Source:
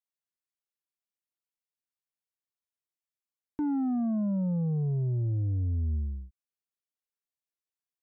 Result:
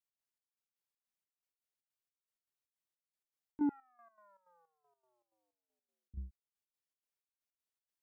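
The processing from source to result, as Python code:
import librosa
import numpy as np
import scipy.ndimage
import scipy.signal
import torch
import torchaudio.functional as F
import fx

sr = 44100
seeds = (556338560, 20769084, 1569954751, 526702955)

y = fx.highpass(x, sr, hz=1200.0, slope=24, at=(3.69, 6.14))
y = fx.step_gate(y, sr, bpm=158, pattern='x.xx..x.x', floor_db=-12.0, edge_ms=4.5)
y = y * librosa.db_to_amplitude(-1.5)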